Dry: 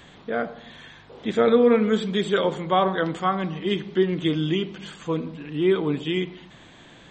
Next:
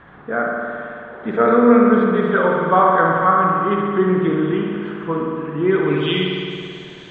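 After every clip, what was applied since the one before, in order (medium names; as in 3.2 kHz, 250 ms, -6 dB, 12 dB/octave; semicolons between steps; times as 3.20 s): low-pass sweep 1.4 kHz -> 5.7 kHz, 5.64–6.38 s; spring tank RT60 2.5 s, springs 54 ms, chirp 30 ms, DRR -1 dB; trim +1.5 dB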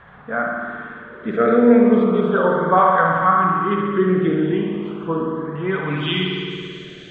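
LFO notch saw up 0.36 Hz 280–2800 Hz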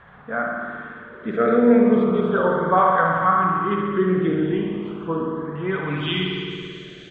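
frequency-shifting echo 136 ms, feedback 45%, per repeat -46 Hz, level -20.5 dB; trim -2.5 dB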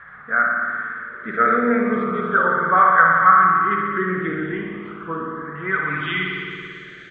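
high-order bell 1.6 kHz +14.5 dB 1.1 oct; trim -5 dB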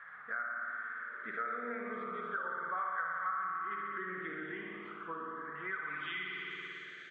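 high-pass 700 Hz 6 dB/octave; compression 3:1, threshold -31 dBFS, peak gain reduction 16 dB; trim -8 dB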